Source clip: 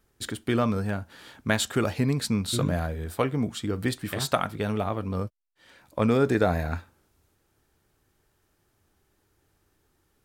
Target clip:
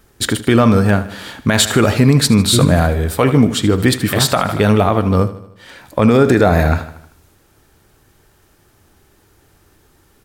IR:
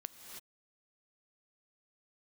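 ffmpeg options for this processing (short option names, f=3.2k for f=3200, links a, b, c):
-filter_complex "[0:a]asplit=2[a][b];[b]aecho=0:1:77|154|231|308|385:0.178|0.0942|0.05|0.0265|0.014[c];[a][c]amix=inputs=2:normalize=0,alimiter=level_in=17dB:limit=-1dB:release=50:level=0:latency=1,volume=-1dB"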